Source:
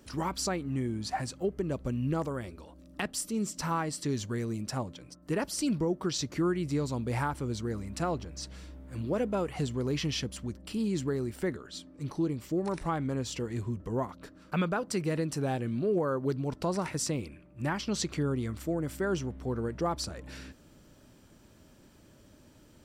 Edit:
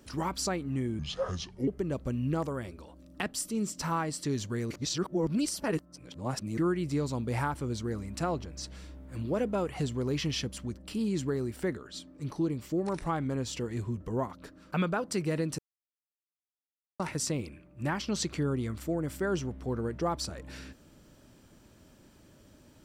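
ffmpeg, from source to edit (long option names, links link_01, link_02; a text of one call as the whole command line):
ffmpeg -i in.wav -filter_complex "[0:a]asplit=7[link_01][link_02][link_03][link_04][link_05][link_06][link_07];[link_01]atrim=end=0.994[link_08];[link_02]atrim=start=0.99:end=1.47,asetpts=PTS-STARTPTS,asetrate=30870,aresample=44100,atrim=end_sample=30240,asetpts=PTS-STARTPTS[link_09];[link_03]atrim=start=1.466:end=4.502[link_10];[link_04]atrim=start=4.498:end=6.372,asetpts=PTS-STARTPTS,areverse[link_11];[link_05]atrim=start=6.368:end=15.38,asetpts=PTS-STARTPTS,afade=type=out:start_time=9.008:duration=0.004:curve=hsin[link_12];[link_06]atrim=start=15.38:end=16.79,asetpts=PTS-STARTPTS,volume=0[link_13];[link_07]atrim=start=16.79,asetpts=PTS-STARTPTS,afade=type=in:duration=0.004:curve=hsin[link_14];[link_08][link_09]acrossfade=duration=0.004:curve1=hsin:curve2=hsin[link_15];[link_15][link_10]acrossfade=duration=0.004:curve1=hsin:curve2=hsin[link_16];[link_16][link_11]acrossfade=duration=0.004:curve1=hsin:curve2=hsin[link_17];[link_12][link_13][link_14]concat=n=3:v=0:a=1[link_18];[link_17][link_18]acrossfade=duration=0.004:curve1=hsin:curve2=hsin" out.wav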